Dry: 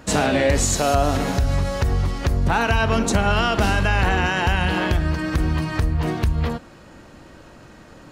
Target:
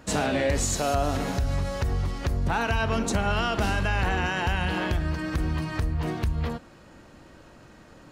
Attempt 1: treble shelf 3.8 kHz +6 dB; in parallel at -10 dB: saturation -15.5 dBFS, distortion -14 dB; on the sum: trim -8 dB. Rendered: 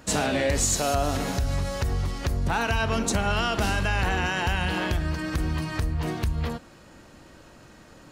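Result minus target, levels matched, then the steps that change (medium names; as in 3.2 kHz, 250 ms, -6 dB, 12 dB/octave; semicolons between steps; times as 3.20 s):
8 kHz band +4.0 dB
remove: treble shelf 3.8 kHz +6 dB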